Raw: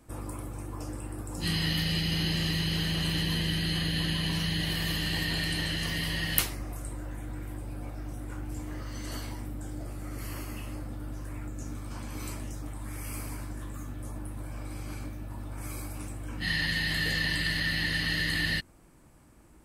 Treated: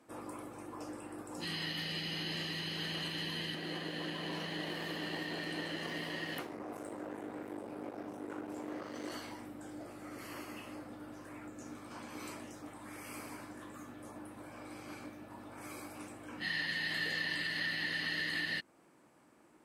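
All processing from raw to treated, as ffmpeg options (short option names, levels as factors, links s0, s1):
-filter_complex "[0:a]asettb=1/sr,asplit=3[s0][s1][s2];[s0]atrim=end=3.544[s3];[s1]atrim=start=3.54:end=9.11,asetpts=PTS-STARTPTS,afade=t=in:d=0.004:c=qsin,afade=t=out:st=5.566:d=0.004:c=qsin,aeval=exprs='sgn(val(0))*max(abs(val(0))-0.00794,0)':c=same,acrossover=split=420|2000[s4][s5][s6];[s4]acompressor=threshold=0.01:ratio=4[s7];[s5]acompressor=threshold=0.00562:ratio=4[s8];[s6]acompressor=threshold=0.00794:ratio=4[s9];[s7][s8][s9]amix=inputs=3:normalize=0,equalizer=f=370:w=0.42:g=10[s10];[s2]atrim=start=9.106[s11];[s3][s10]acrossfade=d=0.004:c1=hsin:c2=qsin[s12];[s12][s11]acrossfade=d=0.004:c1=qsin:c2=hsin,lowpass=f=3700:p=1,alimiter=limit=0.0668:level=0:latency=1:release=224,highpass=280,volume=0.841"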